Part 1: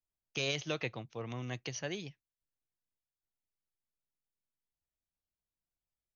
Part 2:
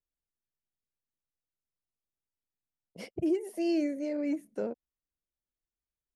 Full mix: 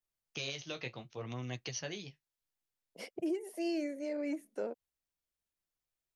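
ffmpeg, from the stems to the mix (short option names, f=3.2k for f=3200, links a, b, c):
-filter_complex "[0:a]adynamicequalizer=threshold=0.00251:dfrequency=4600:dqfactor=1.1:tfrequency=4600:tqfactor=1.1:attack=5:release=100:ratio=0.375:range=3:mode=boostabove:tftype=bell,flanger=delay=7.6:depth=9.2:regen=-37:speed=0.67:shape=sinusoidal,volume=2dB[a];[1:a]highpass=280,lowshelf=f=470:g=-4.5,volume=0dB[b];[a][b]amix=inputs=2:normalize=0,alimiter=level_in=3.5dB:limit=-24dB:level=0:latency=1:release=463,volume=-3.5dB"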